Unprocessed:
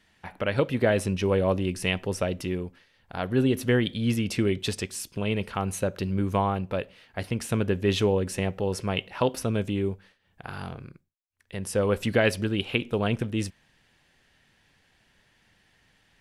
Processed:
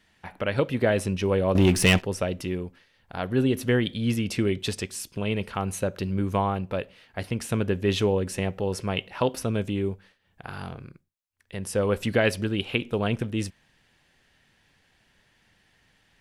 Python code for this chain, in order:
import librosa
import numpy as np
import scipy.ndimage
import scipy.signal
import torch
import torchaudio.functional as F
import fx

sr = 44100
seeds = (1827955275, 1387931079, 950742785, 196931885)

y = fx.leveller(x, sr, passes=3, at=(1.55, 2.02))